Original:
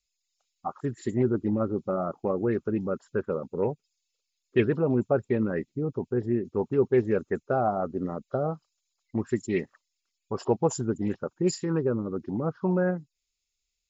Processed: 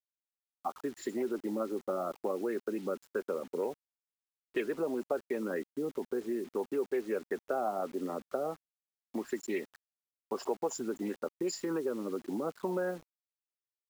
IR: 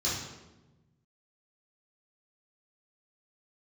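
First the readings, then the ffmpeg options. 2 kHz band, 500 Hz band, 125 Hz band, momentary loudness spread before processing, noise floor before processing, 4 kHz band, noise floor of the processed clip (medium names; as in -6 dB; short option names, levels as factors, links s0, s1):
-5.0 dB, -6.5 dB, -20.5 dB, 9 LU, -83 dBFS, no reading, under -85 dBFS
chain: -filter_complex "[0:a]highpass=f=240:w=0.5412,highpass=f=240:w=1.3066,acrossover=split=370|890[s0][s1][s2];[s0]alimiter=level_in=1.78:limit=0.0631:level=0:latency=1:release=108,volume=0.562[s3];[s3][s1][s2]amix=inputs=3:normalize=0,acompressor=threshold=0.0251:ratio=2.5,acrusher=bits=8:mix=0:aa=0.000001"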